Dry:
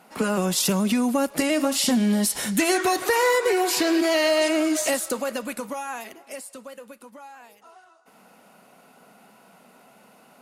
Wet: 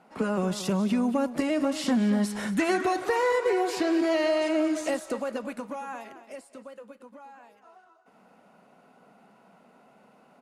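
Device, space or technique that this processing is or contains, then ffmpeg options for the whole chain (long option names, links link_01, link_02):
through cloth: -filter_complex "[0:a]asettb=1/sr,asplit=3[link_01][link_02][link_03];[link_01]atrim=end=1.764[link_04];[link_02]atrim=start=1.76:end=2.76,asetpts=PTS-STARTPTS,afade=type=in:duration=0.004:curve=qsin,afade=type=out:start_time=0.996:duration=0.004:curve=qsin,equalizer=frequency=1400:width_type=o:width=1.3:gain=5.5[link_05];[link_03]atrim=start=2.756[link_06];[link_04][link_05]acrossfade=duration=0.004:curve1=hsin:curve2=qsin[link_07];[link_07][link_06]acrossfade=duration=0.004:curve1=qsin:curve2=hsin,lowpass=9400,highshelf=frequency=2400:gain=-11,asplit=2[link_08][link_09];[link_09]adelay=227.4,volume=-12dB,highshelf=frequency=4000:gain=-5.12[link_10];[link_08][link_10]amix=inputs=2:normalize=0,volume=-3dB"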